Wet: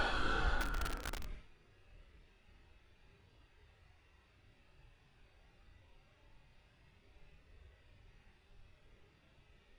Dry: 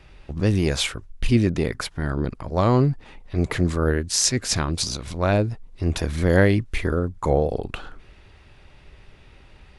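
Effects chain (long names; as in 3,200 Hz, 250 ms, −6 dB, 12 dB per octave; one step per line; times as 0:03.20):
noise gate −37 dBFS, range −19 dB
extreme stretch with random phases 6.7×, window 0.05 s, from 0:07.80
feedback echo at a low word length 608 ms, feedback 55%, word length 6 bits, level −5 dB
level +3.5 dB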